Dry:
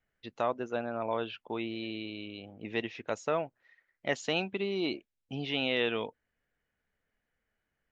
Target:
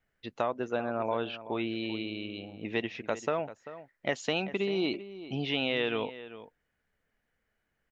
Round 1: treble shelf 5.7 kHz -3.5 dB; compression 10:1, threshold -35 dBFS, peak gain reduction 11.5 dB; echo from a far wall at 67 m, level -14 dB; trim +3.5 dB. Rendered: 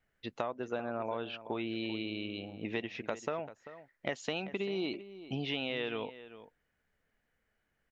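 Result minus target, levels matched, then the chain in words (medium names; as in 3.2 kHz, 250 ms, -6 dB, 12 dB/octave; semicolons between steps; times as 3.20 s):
compression: peak gain reduction +6.5 dB
treble shelf 5.7 kHz -3.5 dB; compression 10:1, threshold -28 dBFS, peak gain reduction 5 dB; echo from a far wall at 67 m, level -14 dB; trim +3.5 dB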